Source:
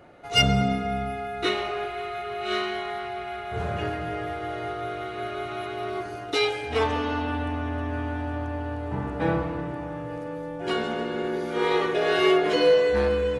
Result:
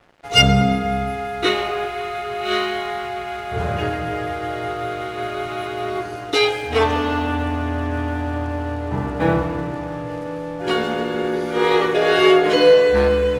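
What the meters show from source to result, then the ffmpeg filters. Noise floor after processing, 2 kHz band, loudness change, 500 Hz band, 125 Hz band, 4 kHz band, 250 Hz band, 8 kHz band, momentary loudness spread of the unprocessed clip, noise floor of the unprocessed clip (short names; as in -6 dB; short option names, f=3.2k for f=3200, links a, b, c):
-29 dBFS, +6.5 dB, +6.5 dB, +6.5 dB, +6.5 dB, +6.5 dB, +6.5 dB, +7.0 dB, 12 LU, -35 dBFS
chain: -af "aeval=exprs='sgn(val(0))*max(abs(val(0))-0.00355,0)':c=same,volume=7dB"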